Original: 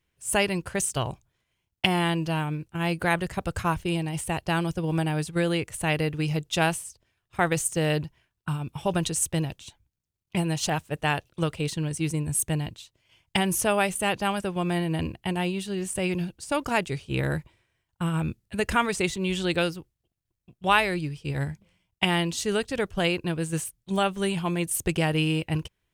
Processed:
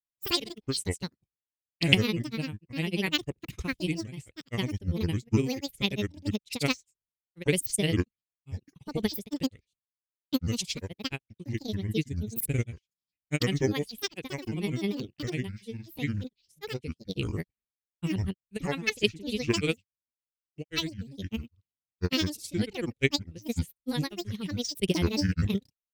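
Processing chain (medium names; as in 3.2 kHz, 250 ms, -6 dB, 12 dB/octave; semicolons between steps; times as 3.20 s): granulator, pitch spread up and down by 12 st; high-order bell 980 Hz -12.5 dB; upward expansion 2.5:1, over -48 dBFS; trim +6.5 dB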